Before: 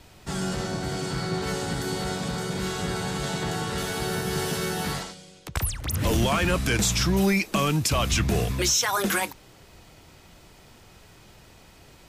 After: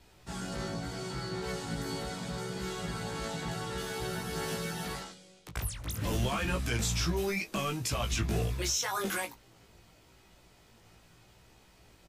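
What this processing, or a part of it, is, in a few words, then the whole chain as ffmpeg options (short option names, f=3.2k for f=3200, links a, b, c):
double-tracked vocal: -filter_complex "[0:a]asplit=2[a][b];[b]adelay=18,volume=-10dB[c];[a][c]amix=inputs=2:normalize=0,flanger=delay=15.5:depth=2.5:speed=0.78,volume=-6dB"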